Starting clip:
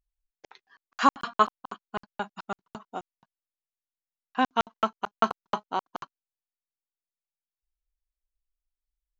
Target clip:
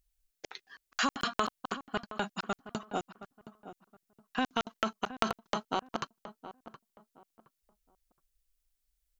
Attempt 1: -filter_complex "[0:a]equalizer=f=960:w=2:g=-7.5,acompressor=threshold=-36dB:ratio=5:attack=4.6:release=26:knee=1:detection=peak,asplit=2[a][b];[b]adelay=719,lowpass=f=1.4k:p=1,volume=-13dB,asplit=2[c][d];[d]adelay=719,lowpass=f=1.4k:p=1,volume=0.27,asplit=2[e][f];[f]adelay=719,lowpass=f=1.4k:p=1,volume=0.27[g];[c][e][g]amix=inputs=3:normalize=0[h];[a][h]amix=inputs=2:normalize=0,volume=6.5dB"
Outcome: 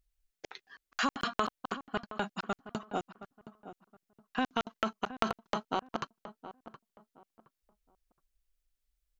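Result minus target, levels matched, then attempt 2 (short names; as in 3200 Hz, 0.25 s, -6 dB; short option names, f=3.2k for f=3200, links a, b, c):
8000 Hz band -4.5 dB
-filter_complex "[0:a]equalizer=f=960:w=2:g=-7.5,acompressor=threshold=-36dB:ratio=5:attack=4.6:release=26:knee=1:detection=peak,highshelf=f=4.4k:g=7,asplit=2[a][b];[b]adelay=719,lowpass=f=1.4k:p=1,volume=-13dB,asplit=2[c][d];[d]adelay=719,lowpass=f=1.4k:p=1,volume=0.27,asplit=2[e][f];[f]adelay=719,lowpass=f=1.4k:p=1,volume=0.27[g];[c][e][g]amix=inputs=3:normalize=0[h];[a][h]amix=inputs=2:normalize=0,volume=6.5dB"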